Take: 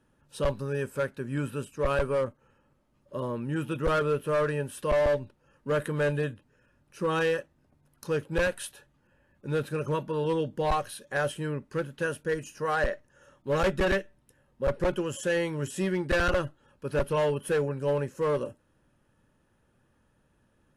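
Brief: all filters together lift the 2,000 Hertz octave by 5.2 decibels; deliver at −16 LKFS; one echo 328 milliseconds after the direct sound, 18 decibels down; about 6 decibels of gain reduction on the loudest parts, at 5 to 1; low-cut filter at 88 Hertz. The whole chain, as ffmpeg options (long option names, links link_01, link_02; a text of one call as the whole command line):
ffmpeg -i in.wav -af "highpass=88,equalizer=frequency=2000:width_type=o:gain=7,acompressor=threshold=-27dB:ratio=5,aecho=1:1:328:0.126,volume=16.5dB" out.wav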